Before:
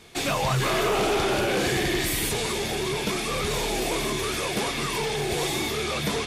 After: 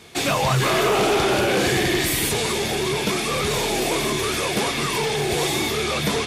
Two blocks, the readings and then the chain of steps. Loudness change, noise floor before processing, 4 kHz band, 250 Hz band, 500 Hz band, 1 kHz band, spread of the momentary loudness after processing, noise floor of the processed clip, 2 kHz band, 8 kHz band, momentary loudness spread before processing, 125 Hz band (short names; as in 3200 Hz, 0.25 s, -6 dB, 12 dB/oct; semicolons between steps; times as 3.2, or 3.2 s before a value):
+4.5 dB, -30 dBFS, +4.5 dB, +4.5 dB, +4.5 dB, +4.5 dB, 4 LU, -25 dBFS, +4.5 dB, +4.5 dB, 4 LU, +4.0 dB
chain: HPF 57 Hz; gain +4.5 dB